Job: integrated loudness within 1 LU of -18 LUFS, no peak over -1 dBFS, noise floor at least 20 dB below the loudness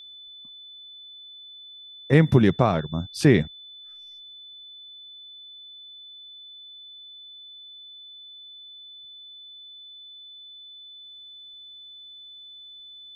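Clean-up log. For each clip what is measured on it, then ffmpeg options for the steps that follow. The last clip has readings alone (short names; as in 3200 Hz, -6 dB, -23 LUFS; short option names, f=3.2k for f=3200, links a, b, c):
steady tone 3500 Hz; tone level -42 dBFS; loudness -21.0 LUFS; peak -4.5 dBFS; loudness target -18.0 LUFS
-> -af "bandreject=f=3.5k:w=30"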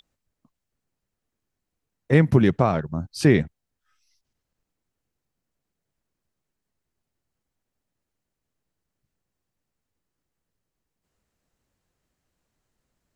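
steady tone none; loudness -20.5 LUFS; peak -4.5 dBFS; loudness target -18.0 LUFS
-> -af "volume=2.5dB"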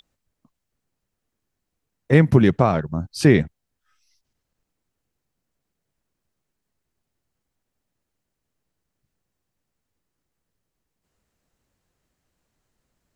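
loudness -18.0 LUFS; peak -2.0 dBFS; noise floor -81 dBFS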